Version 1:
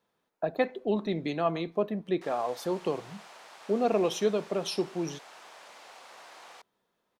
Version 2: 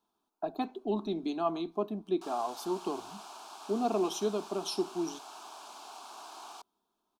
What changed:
background +5.5 dB
master: add phaser with its sweep stopped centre 520 Hz, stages 6

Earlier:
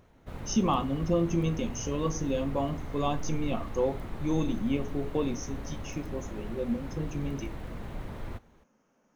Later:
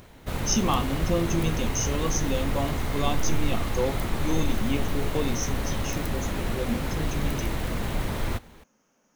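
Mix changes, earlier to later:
background +10.0 dB
master: add high-shelf EQ 2,800 Hz +11.5 dB

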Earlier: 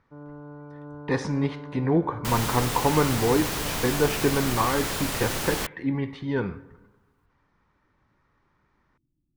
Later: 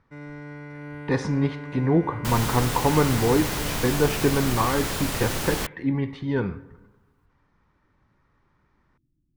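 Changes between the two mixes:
first sound: remove elliptic low-pass filter 1,300 Hz
master: add low-shelf EQ 260 Hz +4 dB

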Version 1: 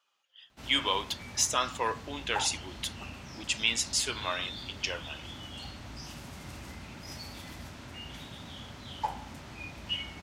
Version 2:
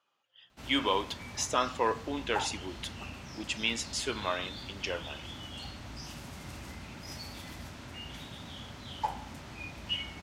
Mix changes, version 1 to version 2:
speech: add spectral tilt −3 dB per octave
reverb: on, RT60 2.4 s

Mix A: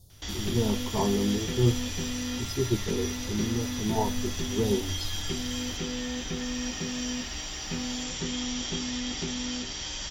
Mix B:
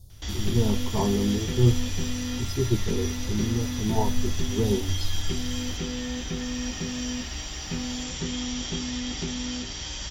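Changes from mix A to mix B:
background: add high-pass filter 47 Hz
master: add low-shelf EQ 97 Hz +11.5 dB

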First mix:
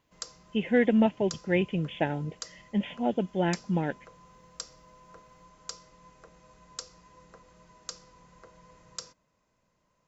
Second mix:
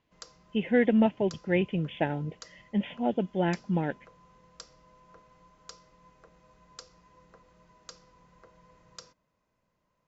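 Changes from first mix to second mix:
background −3.0 dB
master: add high-frequency loss of the air 88 metres

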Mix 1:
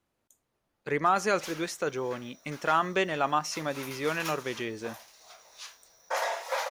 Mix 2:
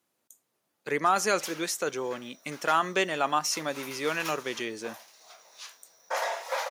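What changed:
speech: add high-shelf EQ 5,000 Hz +11.5 dB
master: add high-pass filter 180 Hz 12 dB per octave

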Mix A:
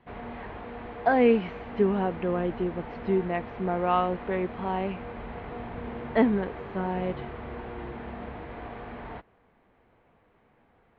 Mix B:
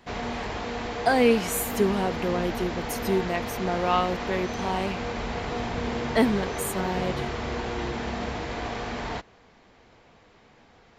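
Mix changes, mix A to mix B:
background +7.0 dB
master: remove Bessel low-pass filter 1,900 Hz, order 8

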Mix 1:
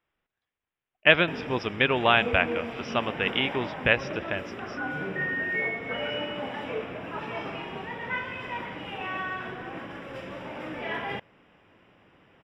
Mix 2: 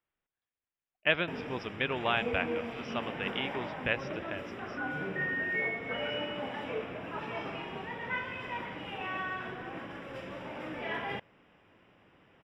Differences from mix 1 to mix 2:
speech −9.0 dB
background −3.5 dB

